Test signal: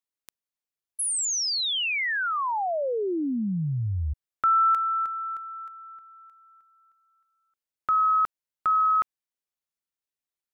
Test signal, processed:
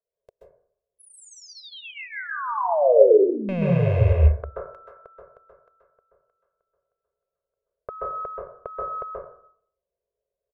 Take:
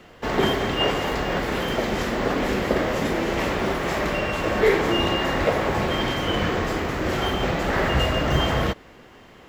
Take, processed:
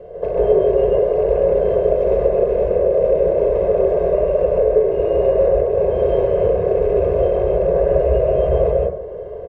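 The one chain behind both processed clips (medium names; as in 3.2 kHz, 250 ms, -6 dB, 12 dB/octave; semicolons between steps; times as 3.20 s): rattle on loud lows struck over -27 dBFS, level -14 dBFS; high-order bell 550 Hz +16 dB 1.1 oct; compression 16:1, threshold -20 dBFS; low-pass 2.2 kHz 6 dB/octave; tilt shelf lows +9 dB, about 890 Hz; comb 1.9 ms, depth 89%; plate-style reverb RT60 0.59 s, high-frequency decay 0.3×, pre-delay 120 ms, DRR -4 dB; trim -6.5 dB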